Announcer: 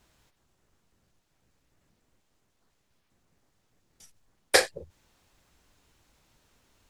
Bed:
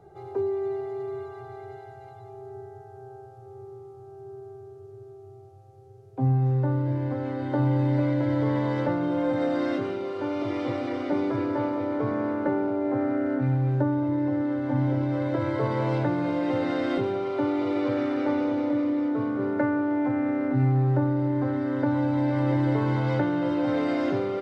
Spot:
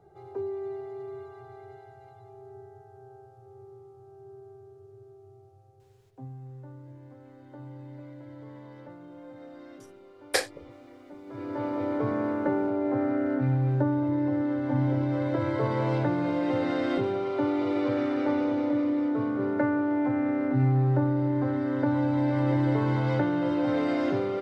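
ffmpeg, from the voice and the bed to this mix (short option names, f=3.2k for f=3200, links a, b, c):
-filter_complex "[0:a]adelay=5800,volume=-5.5dB[a];[1:a]volume=13.5dB,afade=t=out:st=5.66:d=0.63:silence=0.188365,afade=t=in:st=11.25:d=0.59:silence=0.105925[b];[a][b]amix=inputs=2:normalize=0"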